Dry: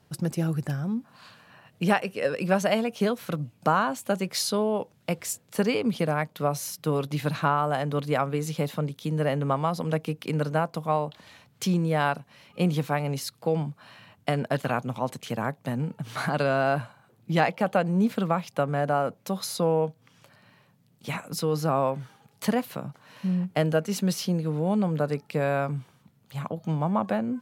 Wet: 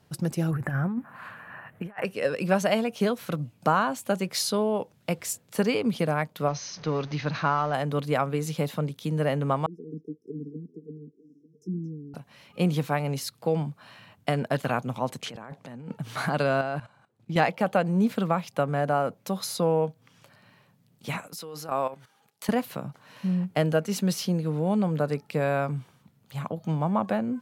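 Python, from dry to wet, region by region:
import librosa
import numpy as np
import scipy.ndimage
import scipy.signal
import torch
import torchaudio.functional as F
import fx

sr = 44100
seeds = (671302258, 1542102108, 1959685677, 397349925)

y = fx.chain(x, sr, fx.curve_eq(hz=(460.0, 1800.0, 4700.0, 12000.0), db=(0, 8, -19, -3)),
    fx.over_compress(threshold_db=-29.0, ratio=-0.5), at=(0.51, 2.05))
y = fx.chain(y, sr, fx.zero_step(step_db=-37.0),
    fx.cheby_ripple(hz=6400.0, ripple_db=3), at=(6.48, 7.74))
y = fx.chain(y, sr, fx.auto_wah(base_hz=240.0, top_hz=1200.0, q=3.4, full_db=-22.0, direction='down'),
    fx.brickwall_bandstop(low_hz=470.0, high_hz=5100.0),
    fx.echo_stepped(ms=223, hz=4800.0, octaves=-1.4, feedback_pct=70, wet_db=-7.5), at=(9.66, 12.14))
y = fx.chain(y, sr, fx.highpass(hz=180.0, slope=6),
    fx.over_compress(threshold_db=-39.0, ratio=-1.0),
    fx.air_absorb(metres=50.0), at=(15.22, 15.97))
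y = fx.chain(y, sr, fx.lowpass(hz=9100.0, slope=12),
    fx.level_steps(step_db=15), at=(16.61, 17.36))
y = fx.chain(y, sr, fx.highpass(hz=450.0, slope=6),
    fx.high_shelf(hz=4100.0, db=3.0),
    fx.level_steps(step_db=13), at=(21.27, 22.49))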